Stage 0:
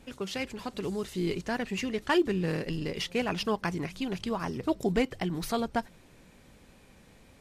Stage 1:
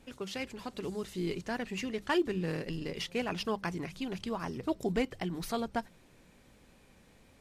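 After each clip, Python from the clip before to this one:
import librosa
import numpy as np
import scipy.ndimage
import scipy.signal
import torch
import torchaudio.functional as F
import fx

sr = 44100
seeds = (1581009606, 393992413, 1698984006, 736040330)

y = fx.hum_notches(x, sr, base_hz=50, count=4)
y = y * librosa.db_to_amplitude(-4.0)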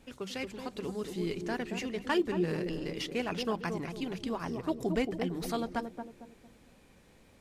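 y = fx.echo_banded(x, sr, ms=226, feedback_pct=43, hz=350.0, wet_db=-4.5)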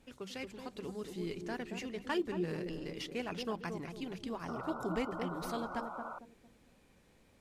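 y = fx.spec_paint(x, sr, seeds[0], shape='noise', start_s=4.48, length_s=1.71, low_hz=520.0, high_hz=1500.0, level_db=-39.0)
y = y * librosa.db_to_amplitude(-5.5)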